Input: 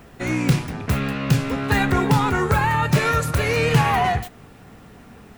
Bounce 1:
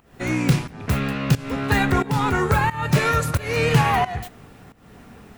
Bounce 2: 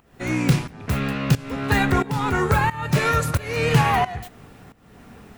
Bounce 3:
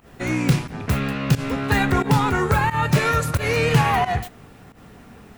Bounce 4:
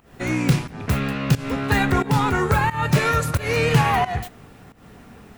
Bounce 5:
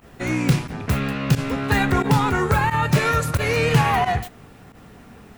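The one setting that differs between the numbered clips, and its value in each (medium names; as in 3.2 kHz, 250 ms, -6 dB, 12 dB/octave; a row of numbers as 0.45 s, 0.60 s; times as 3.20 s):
volume shaper, release: 320 ms, 471 ms, 111 ms, 208 ms, 60 ms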